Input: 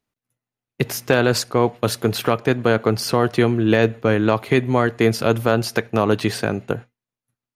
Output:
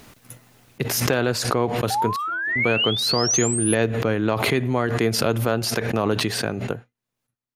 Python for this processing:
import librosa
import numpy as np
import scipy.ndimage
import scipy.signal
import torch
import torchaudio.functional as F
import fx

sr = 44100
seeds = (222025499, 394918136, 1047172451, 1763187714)

y = fx.stiff_resonator(x, sr, f0_hz=330.0, decay_s=0.51, stiffness=0.008, at=(2.16, 2.56))
y = fx.spec_paint(y, sr, seeds[0], shape='rise', start_s=1.9, length_s=1.85, low_hz=760.0, high_hz=11000.0, level_db=-21.0)
y = fx.pre_swell(y, sr, db_per_s=31.0)
y = y * 10.0 ** (-5.5 / 20.0)